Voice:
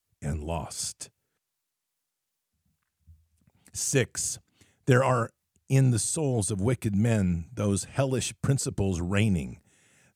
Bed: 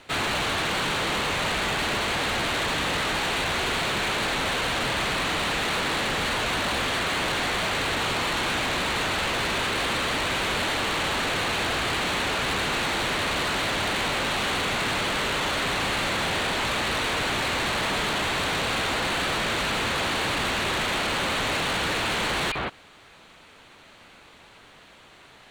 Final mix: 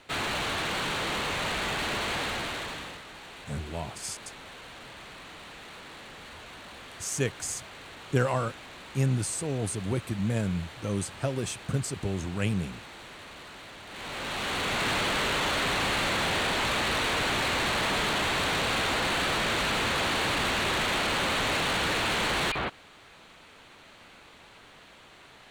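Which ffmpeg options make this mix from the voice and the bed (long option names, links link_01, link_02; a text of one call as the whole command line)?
ffmpeg -i stem1.wav -i stem2.wav -filter_complex "[0:a]adelay=3250,volume=-4dB[link_01];[1:a]volume=13.5dB,afade=type=out:start_time=2.17:duration=0.85:silence=0.177828,afade=type=in:start_time=13.87:duration=1.02:silence=0.125893[link_02];[link_01][link_02]amix=inputs=2:normalize=0" out.wav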